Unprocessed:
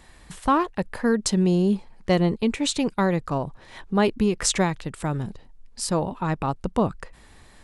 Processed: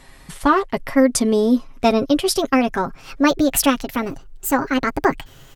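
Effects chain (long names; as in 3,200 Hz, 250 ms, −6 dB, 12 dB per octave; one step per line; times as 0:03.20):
gliding playback speed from 102% → 173%
comb filter 7.4 ms, depth 56%
level +4 dB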